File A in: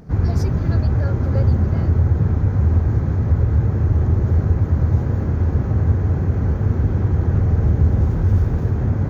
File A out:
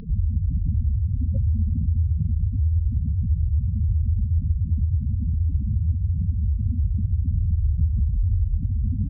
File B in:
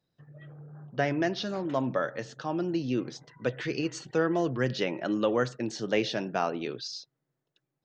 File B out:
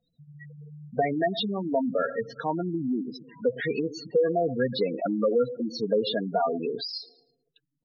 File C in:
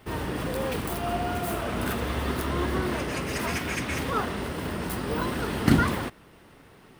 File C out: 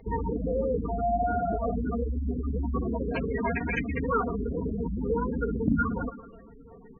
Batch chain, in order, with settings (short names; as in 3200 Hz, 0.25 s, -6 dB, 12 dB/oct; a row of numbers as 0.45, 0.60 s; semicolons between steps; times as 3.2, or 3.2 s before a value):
low shelf 100 Hz +8.5 dB; comb 4.3 ms, depth 48%; tape echo 0.112 s, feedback 50%, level -17 dB, low-pass 4400 Hz; spectral gate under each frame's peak -10 dB strong; compressor 2:1, threshold -30 dBFS; graphic EQ 500/1000/2000/4000/8000 Hz +5/+4/+4/+9/-12 dB; normalise peaks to -12 dBFS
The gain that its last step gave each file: +2.5, +2.0, +0.5 dB